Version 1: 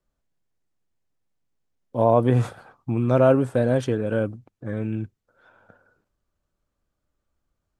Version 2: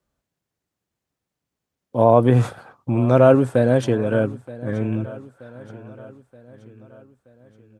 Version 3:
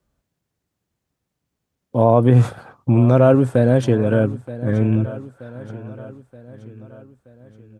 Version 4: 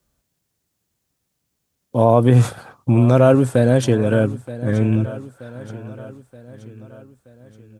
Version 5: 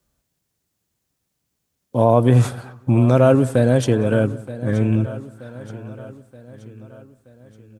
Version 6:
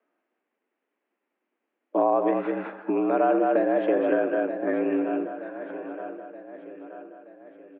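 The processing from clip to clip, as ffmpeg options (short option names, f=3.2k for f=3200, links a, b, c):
-af "highpass=62,aecho=1:1:926|1852|2778|3704:0.119|0.0606|0.0309|0.0158,volume=4dB"
-filter_complex "[0:a]lowshelf=f=240:g=6.5,asplit=2[a][b];[b]alimiter=limit=-9dB:level=0:latency=1:release=366,volume=3dB[c];[a][c]amix=inputs=2:normalize=0,volume=-5.5dB"
-af "highshelf=f=3.5k:g=11"
-filter_complex "[0:a]asplit=2[a][b];[b]adelay=183,lowpass=f=2k:p=1,volume=-20.5dB,asplit=2[c][d];[d]adelay=183,lowpass=f=2k:p=1,volume=0.38,asplit=2[e][f];[f]adelay=183,lowpass=f=2k:p=1,volume=0.38[g];[a][c][e][g]amix=inputs=4:normalize=0,volume=-1dB"
-af "aecho=1:1:206:0.473,acompressor=threshold=-18dB:ratio=5,highpass=f=220:t=q:w=0.5412,highpass=f=220:t=q:w=1.307,lowpass=f=2.5k:t=q:w=0.5176,lowpass=f=2.5k:t=q:w=0.7071,lowpass=f=2.5k:t=q:w=1.932,afreqshift=69,volume=1.5dB"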